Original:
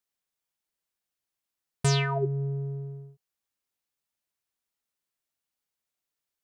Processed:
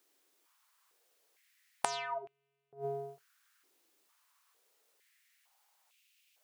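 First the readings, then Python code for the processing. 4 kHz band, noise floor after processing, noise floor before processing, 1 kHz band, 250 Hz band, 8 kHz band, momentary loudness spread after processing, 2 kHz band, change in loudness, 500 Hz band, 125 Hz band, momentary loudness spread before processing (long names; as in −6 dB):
−10.5 dB, −81 dBFS, below −85 dBFS, −1.5 dB, −22.5 dB, −8.0 dB, 11 LU, −8.5 dB, −10.5 dB, −7.5 dB, −27.0 dB, 14 LU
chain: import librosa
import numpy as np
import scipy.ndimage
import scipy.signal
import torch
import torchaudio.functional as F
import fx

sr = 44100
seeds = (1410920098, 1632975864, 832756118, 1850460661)

y = fx.room_early_taps(x, sr, ms=(43, 78), db=(-17.5, -17.0))
y = fx.gate_flip(y, sr, shuts_db=-27.0, range_db=-25)
y = fx.filter_held_highpass(y, sr, hz=2.2, low_hz=340.0, high_hz=2600.0)
y = F.gain(torch.from_numpy(y), 13.0).numpy()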